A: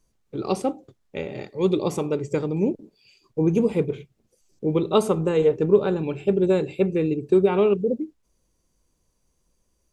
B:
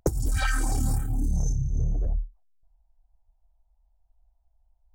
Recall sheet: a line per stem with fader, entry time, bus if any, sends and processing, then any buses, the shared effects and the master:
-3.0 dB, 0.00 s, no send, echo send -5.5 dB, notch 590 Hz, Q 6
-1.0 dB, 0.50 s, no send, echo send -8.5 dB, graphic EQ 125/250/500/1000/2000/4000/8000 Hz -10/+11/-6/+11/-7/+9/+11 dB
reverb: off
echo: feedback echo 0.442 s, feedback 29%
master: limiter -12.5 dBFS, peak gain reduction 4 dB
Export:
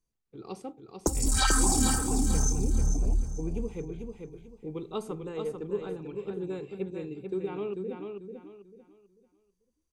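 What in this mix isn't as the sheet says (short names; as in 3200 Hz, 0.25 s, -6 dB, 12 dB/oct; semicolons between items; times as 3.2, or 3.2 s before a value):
stem A -3.0 dB -> -15.0 dB; stem B: entry 0.50 s -> 1.00 s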